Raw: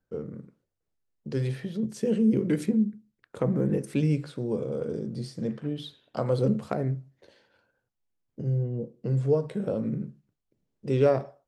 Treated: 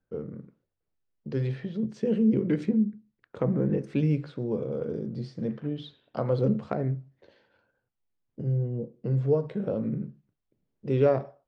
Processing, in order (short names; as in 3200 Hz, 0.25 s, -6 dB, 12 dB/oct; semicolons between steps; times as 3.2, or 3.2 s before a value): air absorption 170 m